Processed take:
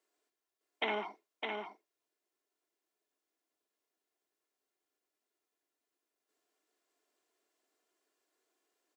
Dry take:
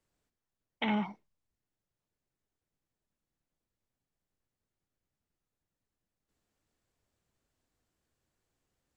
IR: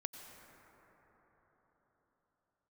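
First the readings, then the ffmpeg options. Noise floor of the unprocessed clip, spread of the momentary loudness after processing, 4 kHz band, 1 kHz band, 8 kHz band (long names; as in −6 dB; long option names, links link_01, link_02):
below −85 dBFS, 11 LU, +1.5 dB, −0.5 dB, can't be measured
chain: -af "highpass=frequency=320:width=0.5412,highpass=frequency=320:width=1.3066,equalizer=frequency=440:width=4.8:gain=3.5,aecho=1:1:2.9:0.44,aecho=1:1:609:0.596"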